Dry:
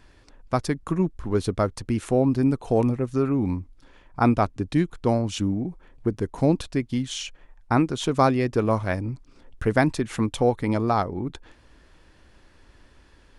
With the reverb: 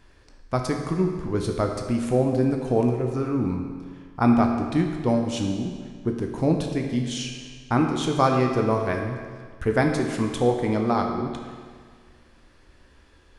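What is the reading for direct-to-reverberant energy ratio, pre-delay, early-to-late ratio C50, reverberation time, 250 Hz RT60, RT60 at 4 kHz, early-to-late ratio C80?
2.0 dB, 14 ms, 4.0 dB, 1.8 s, 1.8 s, 1.6 s, 5.5 dB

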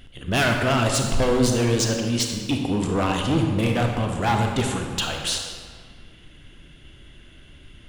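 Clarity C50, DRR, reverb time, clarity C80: 3.0 dB, 2.0 dB, 1.8 s, 4.5 dB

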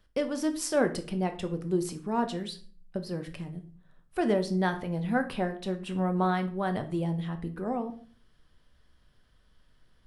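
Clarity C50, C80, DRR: 13.0 dB, 17.5 dB, 7.0 dB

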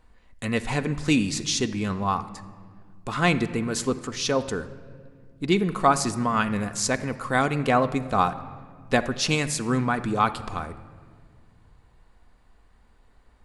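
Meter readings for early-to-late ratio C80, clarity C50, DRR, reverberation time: 15.5 dB, 14.0 dB, 9.0 dB, 1.9 s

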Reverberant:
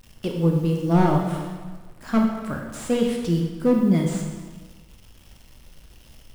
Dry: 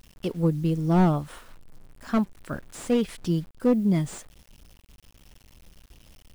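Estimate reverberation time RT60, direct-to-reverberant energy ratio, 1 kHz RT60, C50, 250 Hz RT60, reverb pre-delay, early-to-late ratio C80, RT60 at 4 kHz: 1.4 s, 1.0 dB, 1.4 s, 3.5 dB, 1.4 s, 21 ms, 5.5 dB, 1.1 s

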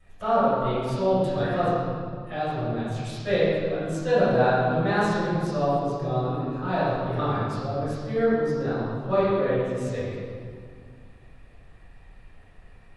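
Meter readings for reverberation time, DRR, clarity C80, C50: 2.1 s, −13.5 dB, −1.0 dB, −3.5 dB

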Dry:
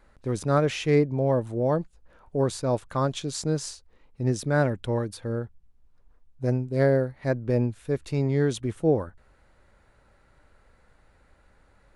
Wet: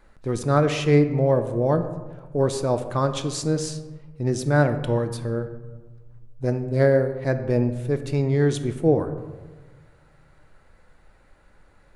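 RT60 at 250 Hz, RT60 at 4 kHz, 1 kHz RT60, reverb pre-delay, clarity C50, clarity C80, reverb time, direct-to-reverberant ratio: 1.6 s, 0.65 s, 1.3 s, 3 ms, 10.5 dB, 12.5 dB, 1.4 s, 8.0 dB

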